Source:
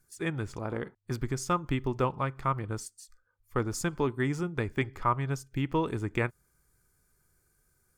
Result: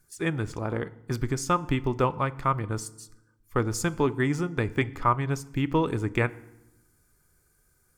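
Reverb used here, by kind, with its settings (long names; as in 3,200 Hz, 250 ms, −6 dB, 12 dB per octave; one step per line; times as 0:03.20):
feedback delay network reverb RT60 0.93 s, low-frequency decay 1.4×, high-frequency decay 0.7×, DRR 16.5 dB
level +4 dB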